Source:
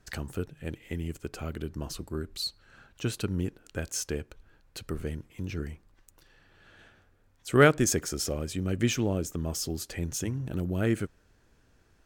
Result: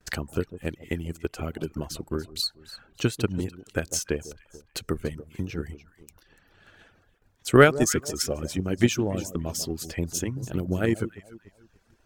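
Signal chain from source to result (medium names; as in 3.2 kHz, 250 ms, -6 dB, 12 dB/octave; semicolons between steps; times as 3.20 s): on a send: echo whose repeats swap between lows and highs 145 ms, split 1.1 kHz, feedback 50%, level -7.5 dB; on the sum: reverb removal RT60 0.62 s; bass shelf 110 Hz -3 dB; transient shaper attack +7 dB, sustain 0 dB; gate with hold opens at -57 dBFS; trim +1.5 dB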